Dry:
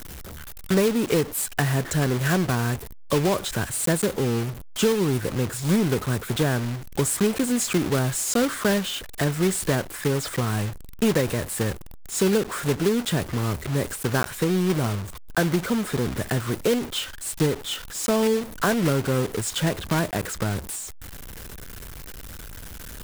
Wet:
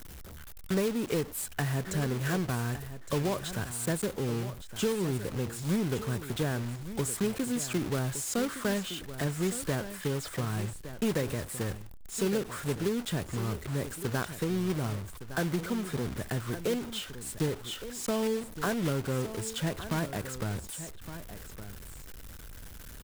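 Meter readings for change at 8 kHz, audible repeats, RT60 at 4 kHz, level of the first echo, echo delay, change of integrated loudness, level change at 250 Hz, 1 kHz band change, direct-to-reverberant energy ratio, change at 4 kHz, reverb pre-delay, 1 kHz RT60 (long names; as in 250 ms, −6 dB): −9.0 dB, 1, no reverb audible, −12.5 dB, 1,163 ms, −8.0 dB, −8.0 dB, −8.5 dB, no reverb audible, −9.0 dB, no reverb audible, no reverb audible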